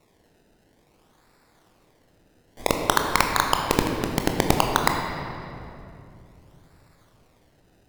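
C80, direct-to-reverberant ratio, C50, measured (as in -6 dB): 4.5 dB, 2.0 dB, 3.5 dB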